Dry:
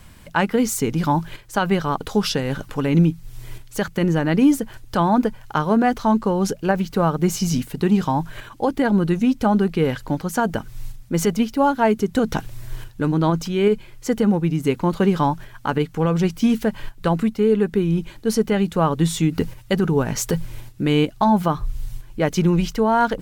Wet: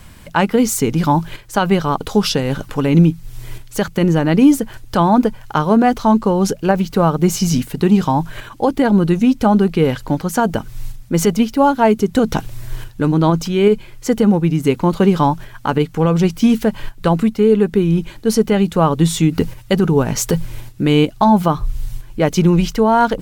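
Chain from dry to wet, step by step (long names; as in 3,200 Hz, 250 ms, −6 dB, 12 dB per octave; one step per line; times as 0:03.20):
dynamic equaliser 1,700 Hz, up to −4 dB, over −39 dBFS, Q 2.5
level +5 dB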